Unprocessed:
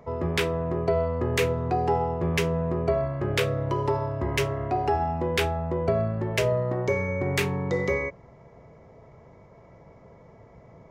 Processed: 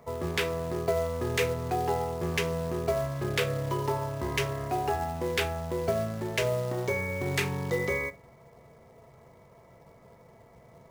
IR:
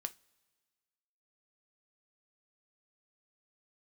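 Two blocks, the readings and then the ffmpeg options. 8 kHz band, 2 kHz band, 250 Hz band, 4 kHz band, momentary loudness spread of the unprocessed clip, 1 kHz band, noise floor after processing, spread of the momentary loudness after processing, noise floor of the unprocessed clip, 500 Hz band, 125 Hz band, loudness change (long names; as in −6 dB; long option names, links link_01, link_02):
0.0 dB, −1.5 dB, −5.0 dB, −1.5 dB, 2 LU, −4.0 dB, −56 dBFS, 2 LU, −52 dBFS, −4.0 dB, −5.0 dB, −3.5 dB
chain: -filter_complex "[0:a]lowshelf=frequency=480:gain=-4[link_01];[1:a]atrim=start_sample=2205[link_02];[link_01][link_02]afir=irnorm=-1:irlink=0,acrossover=split=2400[link_03][link_04];[link_03]acrusher=bits=4:mode=log:mix=0:aa=0.000001[link_05];[link_05][link_04]amix=inputs=2:normalize=0"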